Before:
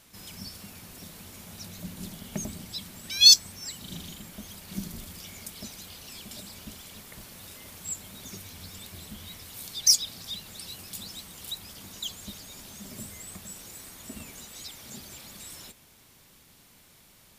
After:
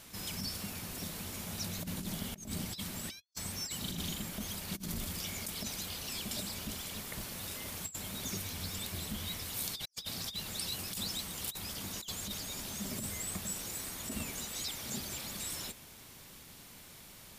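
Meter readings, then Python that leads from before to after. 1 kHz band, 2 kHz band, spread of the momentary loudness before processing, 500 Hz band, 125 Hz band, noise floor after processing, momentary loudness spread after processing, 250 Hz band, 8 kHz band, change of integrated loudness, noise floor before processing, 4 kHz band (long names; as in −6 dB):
+3.0 dB, −0.5 dB, 21 LU, +2.0 dB, +2.0 dB, −53 dBFS, 4 LU, +1.0 dB, −8.0 dB, −14.0 dB, −57 dBFS, −13.0 dB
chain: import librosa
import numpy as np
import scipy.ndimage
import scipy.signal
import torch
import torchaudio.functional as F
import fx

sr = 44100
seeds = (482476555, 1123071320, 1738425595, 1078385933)

y = fx.over_compress(x, sr, threshold_db=-40.0, ratio=-0.5)
y = y * 10.0 ** (-2.0 / 20.0)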